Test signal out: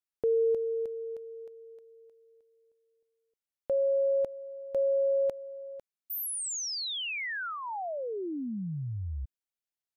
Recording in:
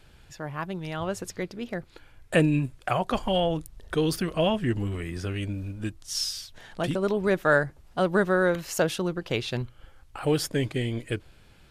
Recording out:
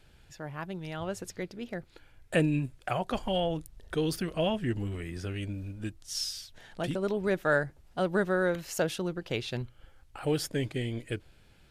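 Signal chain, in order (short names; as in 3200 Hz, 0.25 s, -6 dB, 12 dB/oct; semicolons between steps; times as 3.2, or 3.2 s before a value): bell 1100 Hz -4 dB 0.36 oct; gain -4.5 dB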